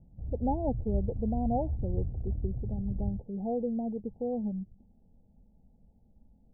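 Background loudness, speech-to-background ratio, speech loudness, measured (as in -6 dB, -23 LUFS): -36.5 LUFS, 2.0 dB, -34.5 LUFS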